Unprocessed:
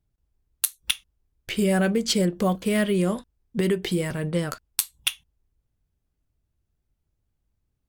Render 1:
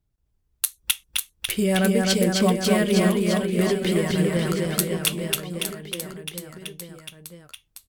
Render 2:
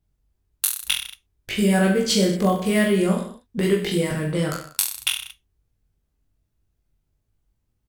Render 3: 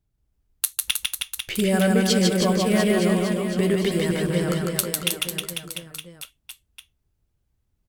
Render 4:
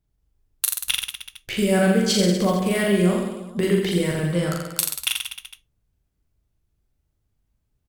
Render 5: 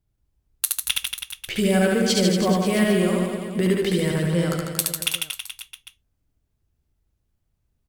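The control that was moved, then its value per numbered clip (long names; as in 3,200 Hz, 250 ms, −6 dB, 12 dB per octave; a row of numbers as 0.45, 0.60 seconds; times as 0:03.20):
reverse bouncing-ball delay, first gap: 260, 20, 150, 40, 70 milliseconds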